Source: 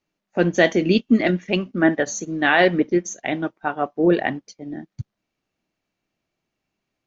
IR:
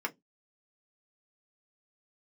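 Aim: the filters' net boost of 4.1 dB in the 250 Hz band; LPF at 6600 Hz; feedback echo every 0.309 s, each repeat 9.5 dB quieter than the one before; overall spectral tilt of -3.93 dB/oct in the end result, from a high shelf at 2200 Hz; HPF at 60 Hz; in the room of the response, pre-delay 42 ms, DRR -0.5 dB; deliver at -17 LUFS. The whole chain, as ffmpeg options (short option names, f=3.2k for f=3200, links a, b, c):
-filter_complex "[0:a]highpass=60,lowpass=6.6k,equalizer=f=250:t=o:g=6,highshelf=f=2.2k:g=-8,aecho=1:1:309|618|927|1236:0.335|0.111|0.0365|0.012,asplit=2[a][b];[1:a]atrim=start_sample=2205,adelay=42[c];[b][c]afir=irnorm=-1:irlink=0,volume=-4.5dB[d];[a][d]amix=inputs=2:normalize=0,volume=-1.5dB"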